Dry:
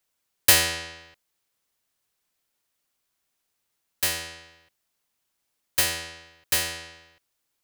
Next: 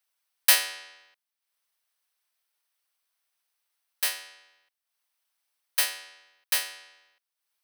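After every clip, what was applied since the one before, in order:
high-pass filter 740 Hz 12 dB per octave
notch filter 7,000 Hz, Q 5.3
transient designer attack 0 dB, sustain −8 dB
level −1.5 dB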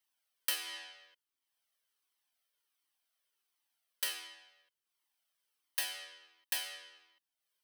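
downward compressor 8 to 1, threshold −27 dBFS, peak gain reduction 13.5 dB
hollow resonant body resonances 300/3,100 Hz, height 9 dB, ringing for 20 ms
flanger whose copies keep moving one way falling 1.4 Hz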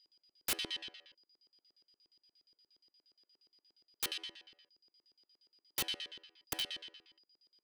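steady tone 4,900 Hz −69 dBFS
auto-filter band-pass square 8.5 Hz 350–3,500 Hz
wrap-around overflow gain 36.5 dB
level +9.5 dB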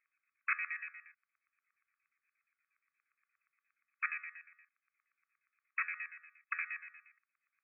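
linear-phase brick-wall band-pass 1,100–2,600 Hz
level +11.5 dB

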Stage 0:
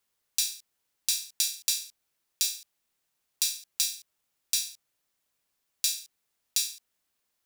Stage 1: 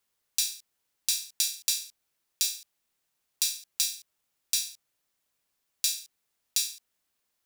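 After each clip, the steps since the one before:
no processing that can be heard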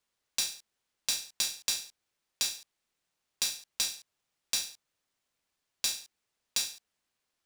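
running median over 3 samples
level −1.5 dB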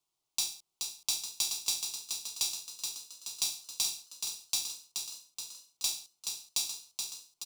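phaser with its sweep stopped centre 340 Hz, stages 8
echo with shifted repeats 426 ms, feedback 59%, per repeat +44 Hz, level −5.5 dB

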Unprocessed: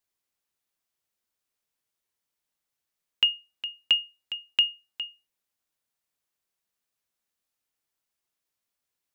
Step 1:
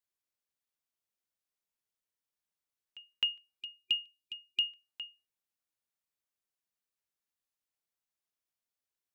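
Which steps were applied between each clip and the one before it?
echo ahead of the sound 261 ms −21 dB
gain on a spectral selection 0:03.60–0:04.65, 370–2,400 Hz −27 dB
level −8.5 dB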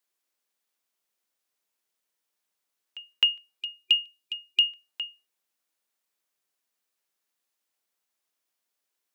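high-pass filter 240 Hz
level +9 dB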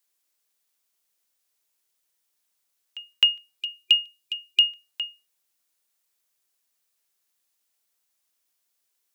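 high-shelf EQ 3,500 Hz +8 dB

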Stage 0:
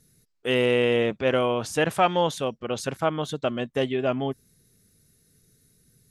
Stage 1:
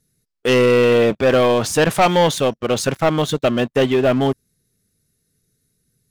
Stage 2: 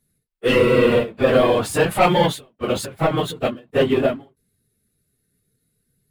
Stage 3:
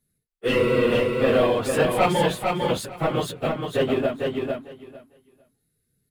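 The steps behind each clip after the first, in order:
leveller curve on the samples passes 3
random phases in long frames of 50 ms; parametric band 5,900 Hz −11 dB 0.54 octaves; every ending faded ahead of time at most 180 dB per second; level −1 dB
repeating echo 451 ms, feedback 16%, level −4 dB; level −5 dB

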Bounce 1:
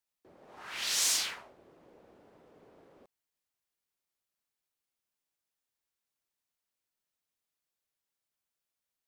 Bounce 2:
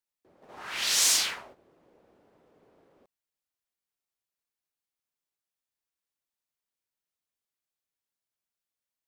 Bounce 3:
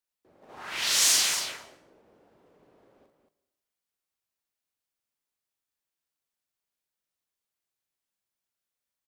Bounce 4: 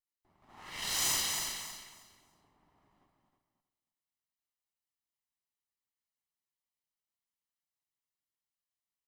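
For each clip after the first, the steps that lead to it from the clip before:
noise gate −56 dBFS, range −9 dB; level +5.5 dB
on a send: multi-tap delay 41/228 ms −5.5/−6.5 dB; on the sum: dense smooth reverb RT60 0.84 s, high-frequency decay 0.7×, pre-delay 110 ms, DRR 17 dB
lower of the sound and its delayed copy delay 1 ms; repeating echo 317 ms, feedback 20%, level −7.5 dB; level −7.5 dB

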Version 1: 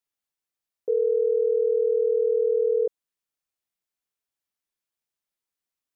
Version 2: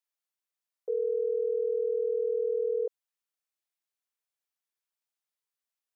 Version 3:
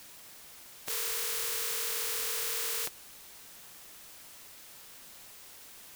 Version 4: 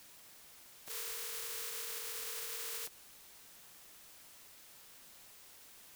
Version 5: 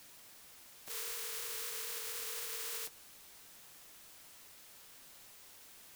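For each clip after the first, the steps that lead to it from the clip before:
high-pass filter 500 Hz 12 dB per octave; level −3 dB
compressing power law on the bin magnitudes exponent 0.1; background noise white −47 dBFS; level −4 dB
brickwall limiter −25.5 dBFS, peak gain reduction 7 dB; level −6.5 dB
flanger 0.78 Hz, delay 6.7 ms, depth 5.8 ms, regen −64%; level +5 dB

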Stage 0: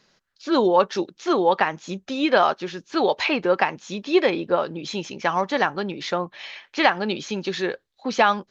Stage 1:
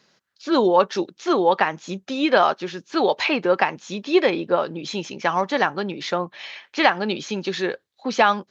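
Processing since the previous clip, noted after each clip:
high-pass filter 96 Hz
level +1 dB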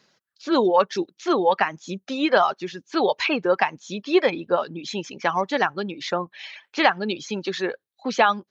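reverb reduction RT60 0.73 s
level −1 dB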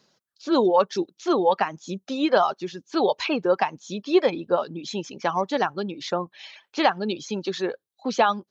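parametric band 2,000 Hz −7.5 dB 1.1 octaves

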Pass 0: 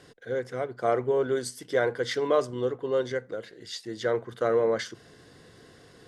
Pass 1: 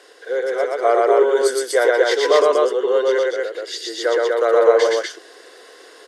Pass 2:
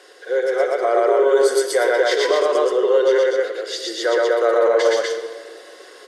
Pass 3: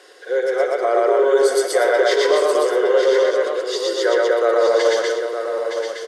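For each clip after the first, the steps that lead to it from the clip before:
Butterworth high-pass 370 Hz 36 dB per octave; loudspeakers that aren't time-aligned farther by 40 metres −1 dB, 84 metres −2 dB; level +8 dB
brickwall limiter −9 dBFS, peak gain reduction 7.5 dB; rectangular room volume 2,200 cubic metres, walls mixed, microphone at 1 metre
single-tap delay 915 ms −7.5 dB

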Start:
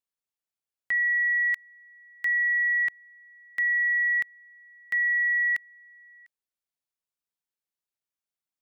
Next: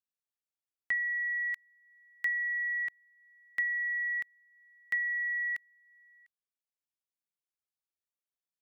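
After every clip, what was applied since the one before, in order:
transient designer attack +6 dB, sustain −4 dB
level −8.5 dB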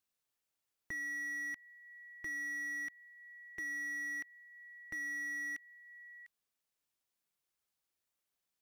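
downward compressor 3 to 1, threshold −38 dBFS, peak gain reduction 8.5 dB
slew-rate limiting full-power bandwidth 9.5 Hz
level +7 dB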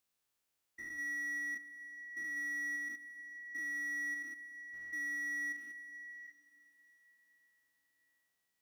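spectrum averaged block by block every 200 ms
in parallel at +1 dB: brickwall limiter −44.5 dBFS, peak gain reduction 10 dB
on the sum: dense smooth reverb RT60 4.6 s, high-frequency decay 0.95×, DRR 13 dB
level −2 dB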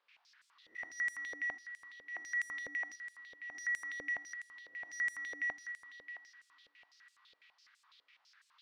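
peak hold with a rise ahead of every peak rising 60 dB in 0.47 s
noise in a band 960–5,000 Hz −69 dBFS
band-pass on a step sequencer 12 Hz 500–8,000 Hz
level +10.5 dB

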